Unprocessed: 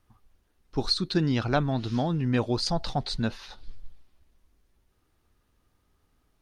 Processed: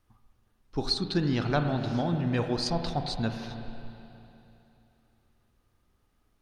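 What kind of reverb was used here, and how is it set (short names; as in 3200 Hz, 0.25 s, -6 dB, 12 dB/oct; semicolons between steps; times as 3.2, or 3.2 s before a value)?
spring tank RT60 3.1 s, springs 35/41/45 ms, chirp 75 ms, DRR 5.5 dB; gain -2.5 dB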